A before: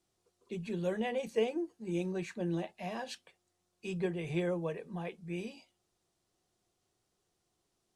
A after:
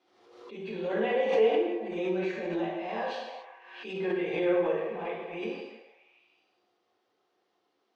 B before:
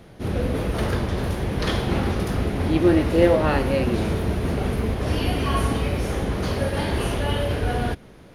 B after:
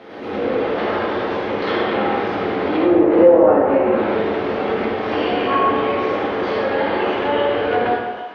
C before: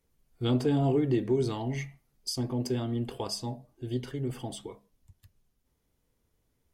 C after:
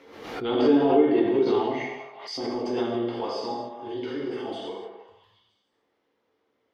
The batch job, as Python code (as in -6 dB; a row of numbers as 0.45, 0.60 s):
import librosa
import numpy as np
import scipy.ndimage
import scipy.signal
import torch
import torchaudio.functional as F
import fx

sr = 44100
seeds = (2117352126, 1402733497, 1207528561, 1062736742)

y = scipy.signal.sosfilt(scipy.signal.butter(2, 400.0, 'highpass', fs=sr, output='sos'), x)
y = fx.echo_stepped(y, sr, ms=160, hz=510.0, octaves=0.7, feedback_pct=70, wet_db=-9)
y = fx.transient(y, sr, attack_db=-6, sustain_db=1)
y = fx.env_lowpass_down(y, sr, base_hz=880.0, full_db=-19.5)
y = fx.air_absorb(y, sr, metres=270.0)
y = fx.rev_gated(y, sr, seeds[0], gate_ms=320, shape='falling', drr_db=-6.0)
y = fx.pre_swell(y, sr, db_per_s=58.0)
y = y * 10.0 ** (3.5 / 20.0)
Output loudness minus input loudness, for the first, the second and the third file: +7.0, +5.0, +5.5 LU